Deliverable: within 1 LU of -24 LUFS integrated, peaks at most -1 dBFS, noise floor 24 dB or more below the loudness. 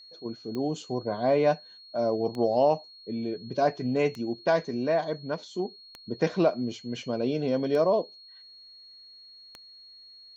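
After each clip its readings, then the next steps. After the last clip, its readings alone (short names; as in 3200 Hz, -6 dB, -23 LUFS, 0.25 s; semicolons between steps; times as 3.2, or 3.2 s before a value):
clicks 6; steady tone 4300 Hz; tone level -48 dBFS; loudness -28.0 LUFS; peak -11.5 dBFS; loudness target -24.0 LUFS
-> de-click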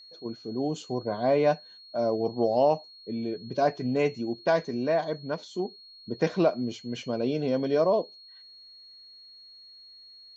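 clicks 0; steady tone 4300 Hz; tone level -48 dBFS
-> notch 4300 Hz, Q 30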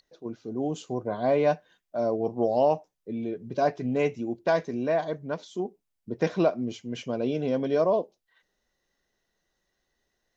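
steady tone none; loudness -28.0 LUFS; peak -11.5 dBFS; loudness target -24.0 LUFS
-> gain +4 dB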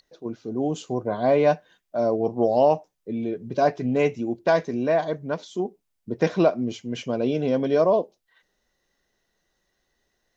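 loudness -24.0 LUFS; peak -7.5 dBFS; noise floor -76 dBFS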